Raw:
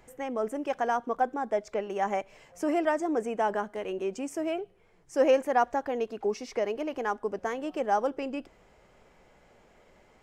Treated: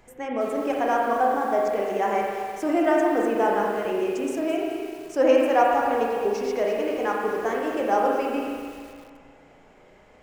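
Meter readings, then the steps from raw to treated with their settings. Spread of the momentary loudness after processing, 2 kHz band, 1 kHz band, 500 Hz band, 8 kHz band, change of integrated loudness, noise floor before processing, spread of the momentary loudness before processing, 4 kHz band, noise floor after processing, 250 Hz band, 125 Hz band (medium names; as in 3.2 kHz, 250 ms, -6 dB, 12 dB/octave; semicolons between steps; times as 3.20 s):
10 LU, +6.5 dB, +6.5 dB, +6.5 dB, +3.5 dB, +6.0 dB, -61 dBFS, 8 LU, +6.0 dB, -53 dBFS, +7.0 dB, no reading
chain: spring tank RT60 2 s, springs 35/43 ms, chirp 75 ms, DRR -2 dB; bit-crushed delay 213 ms, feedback 35%, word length 7-bit, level -10 dB; trim +2 dB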